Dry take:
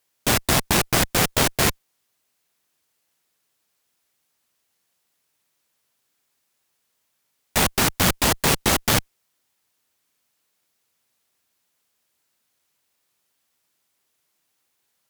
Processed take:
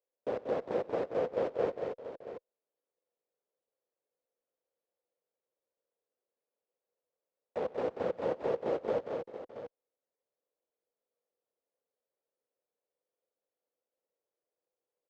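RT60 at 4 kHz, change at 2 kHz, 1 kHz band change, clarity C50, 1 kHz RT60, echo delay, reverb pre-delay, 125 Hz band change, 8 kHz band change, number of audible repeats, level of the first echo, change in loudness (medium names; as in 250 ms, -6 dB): no reverb, -25.0 dB, -15.5 dB, no reverb, no reverb, 95 ms, no reverb, -24.5 dB, under -40 dB, 5, -19.5 dB, -15.5 dB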